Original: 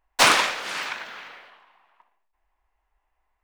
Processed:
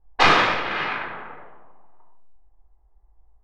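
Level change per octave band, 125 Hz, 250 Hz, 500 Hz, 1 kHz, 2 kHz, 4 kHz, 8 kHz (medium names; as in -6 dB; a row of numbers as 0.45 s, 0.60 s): +10.0 dB, +6.0 dB, +4.0 dB, +3.5 dB, +2.0 dB, -2.0 dB, under -10 dB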